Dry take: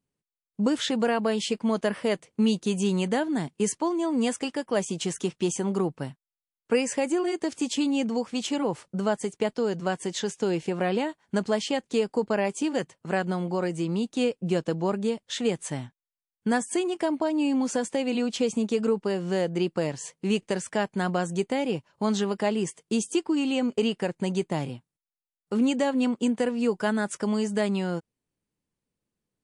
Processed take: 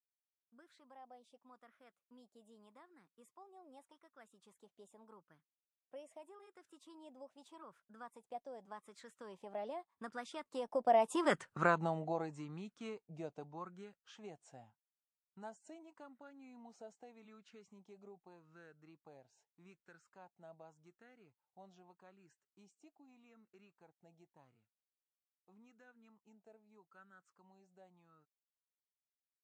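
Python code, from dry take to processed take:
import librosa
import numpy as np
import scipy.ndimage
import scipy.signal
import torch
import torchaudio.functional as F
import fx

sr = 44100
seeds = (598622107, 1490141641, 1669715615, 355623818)

y = fx.doppler_pass(x, sr, speed_mps=40, closest_m=5.6, pass_at_s=11.43)
y = fx.bell_lfo(y, sr, hz=0.83, low_hz=670.0, high_hz=1500.0, db=17)
y = y * librosa.db_to_amplitude(-3.0)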